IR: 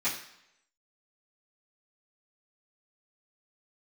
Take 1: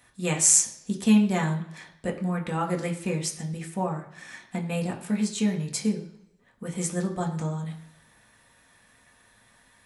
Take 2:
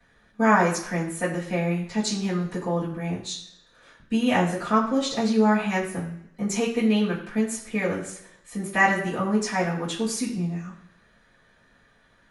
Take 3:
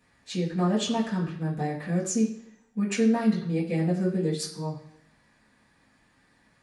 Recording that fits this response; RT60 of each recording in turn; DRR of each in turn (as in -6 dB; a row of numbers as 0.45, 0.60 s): 2; 0.75, 0.75, 0.75 s; 0.5, -14.5, -9.5 dB